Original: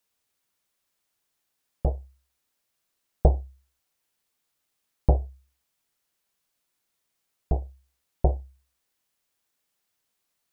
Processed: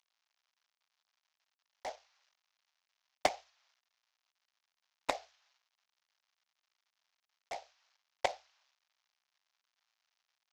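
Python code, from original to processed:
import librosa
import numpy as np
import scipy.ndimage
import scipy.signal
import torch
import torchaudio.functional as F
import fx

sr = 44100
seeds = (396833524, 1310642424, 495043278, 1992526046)

y = fx.cvsd(x, sr, bps=32000)
y = scipy.signal.sosfilt(scipy.signal.cheby2(4, 50, 270.0, 'highpass', fs=sr, output='sos'), y)
y = fx.cheby_harmonics(y, sr, harmonics=(7,), levels_db=(-11,), full_scale_db=-17.5)
y = y * librosa.db_to_amplitude(3.0)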